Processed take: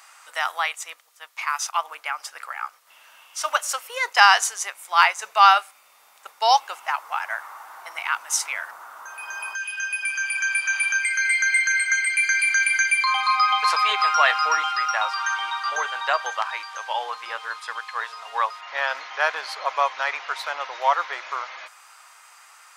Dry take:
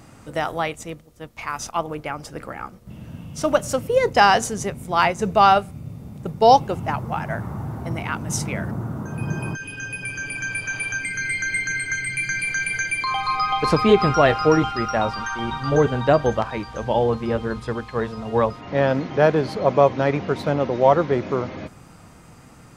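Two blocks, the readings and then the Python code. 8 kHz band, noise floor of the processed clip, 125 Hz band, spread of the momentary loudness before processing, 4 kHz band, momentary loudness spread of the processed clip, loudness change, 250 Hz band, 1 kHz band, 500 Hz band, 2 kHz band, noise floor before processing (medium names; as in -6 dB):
+4.5 dB, -54 dBFS, under -40 dB, 16 LU, +4.5 dB, 14 LU, -0.5 dB, under -35 dB, 0.0 dB, -14.5 dB, +4.5 dB, -46 dBFS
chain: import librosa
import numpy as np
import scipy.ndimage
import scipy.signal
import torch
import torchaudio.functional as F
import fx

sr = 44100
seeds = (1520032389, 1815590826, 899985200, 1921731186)

y = scipy.signal.sosfilt(scipy.signal.butter(4, 990.0, 'highpass', fs=sr, output='sos'), x)
y = y * 10.0 ** (4.5 / 20.0)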